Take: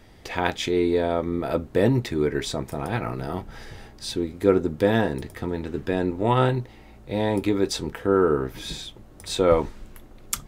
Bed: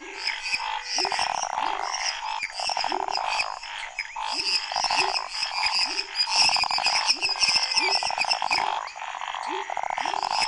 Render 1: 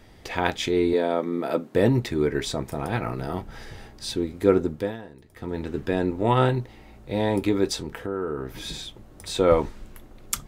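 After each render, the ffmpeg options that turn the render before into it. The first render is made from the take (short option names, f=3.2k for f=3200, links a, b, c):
-filter_complex "[0:a]asettb=1/sr,asplit=3[a][b][c];[a]atrim=end=0.934[d];[b]atrim=start=0.93:end=1.75,asetpts=PTS-STARTPTS,afade=t=in:d=0.004:c=qsin,afade=t=out:st=0.816:d=0.004:c=qsin,highpass=f=180:w=0.5412,highpass=f=180:w=1.3066[e];[c]atrim=start=1.746[f];[d][e]acrossfade=d=0.004:c1=hsin:c2=qsin[g];[g][f]acrossfade=d=0.004:c1=qsin:c2=hsin,asettb=1/sr,asplit=3[h][i][j];[h]atrim=end=7.744[k];[i]atrim=start=7.74:end=9.35,asetpts=PTS-STARTPTS,afade=t=in:d=0.004:c=qsin,afade=t=out:st=1.606:d=0.004:c=qsin,acompressor=threshold=-29dB:ratio=2.5:attack=3.2:release=140:knee=1:detection=peak[l];[j]atrim=start=9.346[m];[k][l]acrossfade=d=0.004:c1=hsin:c2=qsin[n];[n][m]acrossfade=d=0.004:c1=qsin:c2=hsin,asplit=3[o][p][q];[o]atrim=end=4.97,asetpts=PTS-STARTPTS,afade=t=out:st=4.63:d=0.34:silence=0.11885[r];[p]atrim=start=4.97:end=5.27,asetpts=PTS-STARTPTS,volume=-18.5dB[s];[q]atrim=start=5.27,asetpts=PTS-STARTPTS,afade=t=in:d=0.34:silence=0.11885[t];[r][s][t]concat=n=3:v=0:a=1"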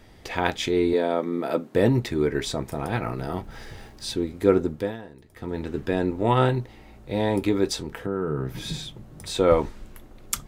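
-filter_complex "[0:a]asettb=1/sr,asplit=3[a][b][c];[a]atrim=end=3.444[d];[b]atrim=start=3.44:end=4.12,asetpts=PTS-STARTPTS,afade=t=in:d=0.004:c=qsin,afade=t=out:st=0.676:d=0.004:c=qsin,aeval=exprs='val(0)*gte(abs(val(0)),0.002)':c=same[e];[c]atrim=start=4.116[f];[d][e]acrossfade=d=0.004:c1=hsin:c2=qsin[g];[g][f]acrossfade=d=0.004:c1=qsin:c2=hsin,asettb=1/sr,asplit=3[h][i][j];[h]atrim=end=8.064[k];[i]atrim=start=8.06:end=9.28,asetpts=PTS-STARTPTS,afade=t=in:d=0.004:c=qsin,afade=t=out:st=1.216:d=0.004:c=qsin,equalizer=f=150:t=o:w=0.77:g=12[l];[j]atrim=start=9.276[m];[k][l]acrossfade=d=0.004:c1=hsin:c2=qsin[n];[n][m]acrossfade=d=0.004:c1=qsin:c2=hsin"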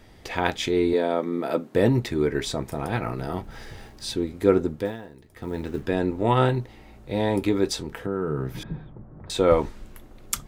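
-filter_complex "[0:a]asettb=1/sr,asplit=3[a][b][c];[a]atrim=end=4.854[d];[b]atrim=start=4.85:end=5.83,asetpts=PTS-STARTPTS,afade=t=in:d=0.004:c=qsin,afade=t=out:st=0.976:d=0.004:c=qsin,acrusher=bits=8:mode=log:mix=0:aa=0.000001[e];[c]atrim=start=5.826[f];[d][e]acrossfade=d=0.004:c1=hsin:c2=qsin[g];[g][f]acrossfade=d=0.004:c1=qsin:c2=hsin,asettb=1/sr,asplit=3[h][i][j];[h]atrim=end=8.634[k];[i]atrim=start=8.63:end=9.3,asetpts=PTS-STARTPTS,afade=t=in:d=0.004:c=qsin,afade=t=out:st=0.666:d=0.004:c=qsin,lowpass=f=1.5k:w=0.5412,lowpass=f=1.5k:w=1.3066[l];[j]atrim=start=9.296[m];[k][l]acrossfade=d=0.004:c1=hsin:c2=qsin[n];[n][m]acrossfade=d=0.004:c1=qsin:c2=hsin"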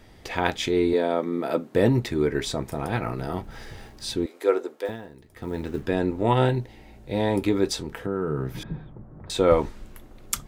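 -filter_complex "[0:a]asettb=1/sr,asplit=3[a][b][c];[a]atrim=end=4.264[d];[b]atrim=start=4.26:end=4.89,asetpts=PTS-STARTPTS,afade=t=in:d=0.004:c=qsin,afade=t=out:st=0.626:d=0.004:c=qsin,highpass=f=410:w=0.5412,highpass=f=410:w=1.3066[e];[c]atrim=start=4.886[f];[d][e]acrossfade=d=0.004:c1=hsin:c2=qsin[g];[g][f]acrossfade=d=0.004:c1=qsin:c2=hsin,asettb=1/sr,asplit=3[h][i][j];[h]atrim=end=6.334[k];[i]atrim=start=6.33:end=7.13,asetpts=PTS-STARTPTS,afade=t=in:d=0.004:c=qsin,afade=t=out:st=0.796:d=0.004:c=qsin,equalizer=f=1.2k:w=7.3:g=-14[l];[j]atrim=start=7.126[m];[k][l]acrossfade=d=0.004:c1=hsin:c2=qsin[n];[n][m]acrossfade=d=0.004:c1=qsin:c2=hsin"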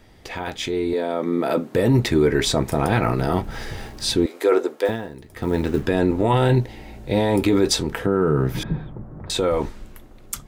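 -filter_complex "[0:a]acrossover=split=7200[a][b];[a]alimiter=limit=-18dB:level=0:latency=1:release=12[c];[c][b]amix=inputs=2:normalize=0,dynaudnorm=f=530:g=5:m=9dB"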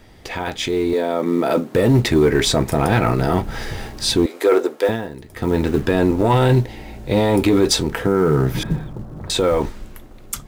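-filter_complex "[0:a]asplit=2[a][b];[b]acrusher=bits=5:mode=log:mix=0:aa=0.000001,volume=-4.5dB[c];[a][c]amix=inputs=2:normalize=0,asoftclip=type=tanh:threshold=-5.5dB"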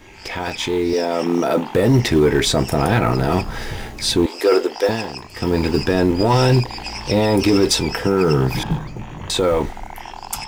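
-filter_complex "[1:a]volume=-7.5dB[a];[0:a][a]amix=inputs=2:normalize=0"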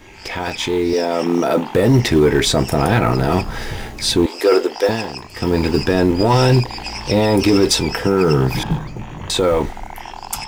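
-af "volume=1.5dB"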